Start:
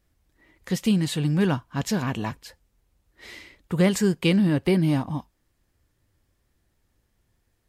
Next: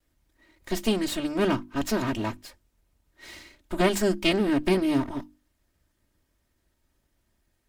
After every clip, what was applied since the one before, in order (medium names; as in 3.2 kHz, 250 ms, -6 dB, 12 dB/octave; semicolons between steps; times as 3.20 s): comb filter that takes the minimum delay 3.2 ms; hum notches 50/100/150/200/250/300/350 Hz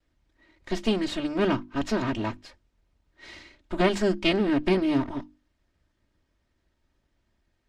low-pass 5 kHz 12 dB/octave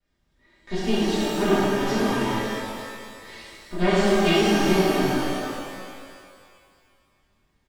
comb 5 ms, depth 42%; pitch-shifted reverb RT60 2.1 s, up +12 st, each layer -8 dB, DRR -10 dB; trim -7.5 dB